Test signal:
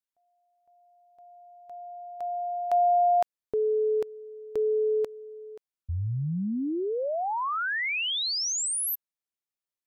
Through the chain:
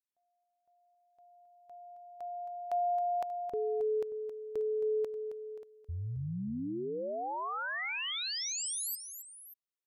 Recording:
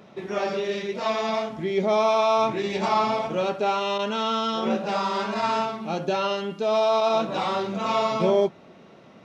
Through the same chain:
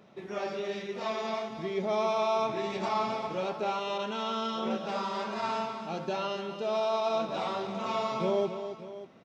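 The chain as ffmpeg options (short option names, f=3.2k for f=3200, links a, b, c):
-af "aecho=1:1:269|585:0.316|0.178,volume=-8dB"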